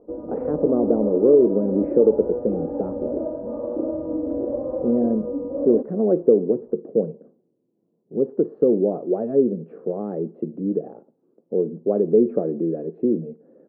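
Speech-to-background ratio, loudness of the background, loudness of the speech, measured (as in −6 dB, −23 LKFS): 6.0 dB, −28.0 LKFS, −22.0 LKFS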